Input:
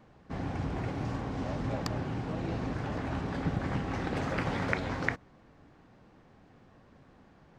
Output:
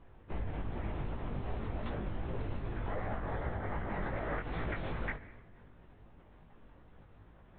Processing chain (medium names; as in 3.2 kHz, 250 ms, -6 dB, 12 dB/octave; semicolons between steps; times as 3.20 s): on a send at -16 dB: reverberation RT60 1.1 s, pre-delay 3 ms; on the sum: time-frequency box 2.88–4.40 s, 320–2200 Hz +9 dB; LPC vocoder at 8 kHz whisper; bass shelf 80 Hz +6 dB; compression 10:1, threshold -31 dBFS, peak gain reduction 12 dB; chorus 2.6 Hz, delay 17 ms, depth 4.6 ms; trim +1.5 dB; AAC 32 kbps 22.05 kHz